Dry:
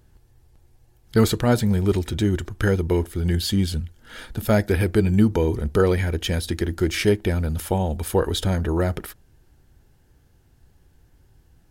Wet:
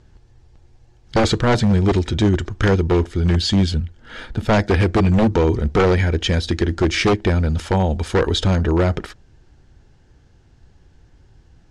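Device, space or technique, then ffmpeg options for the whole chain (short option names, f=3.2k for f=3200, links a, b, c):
synthesiser wavefolder: -filter_complex "[0:a]asettb=1/sr,asplit=3[a][b][c];[a]atrim=end=3.714[d];[b]atrim=start=3.71:end=4.53,asetpts=PTS-STARTPTS,afade=t=in:d=0.004:c=qsin,afade=t=out:st=0.816:d=0.004:c=qsin,equalizer=f=6k:t=o:w=1.5:g=-5.5[e];[c]atrim=start=4.526[f];[d][e]acrossfade=d=0.004:c1=hsin:c2=qsin[g];[g][f]acrossfade=d=0.004:c1=qsin:c2=hsin,aeval=exprs='0.188*(abs(mod(val(0)/0.188+3,4)-2)-1)':c=same,lowpass=f=6.8k:w=0.5412,lowpass=f=6.8k:w=1.3066,volume=5.5dB"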